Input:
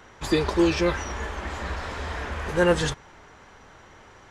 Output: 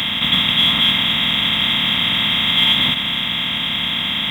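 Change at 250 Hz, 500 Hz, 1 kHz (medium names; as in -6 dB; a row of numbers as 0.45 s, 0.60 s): +1.0 dB, -11.0 dB, +4.5 dB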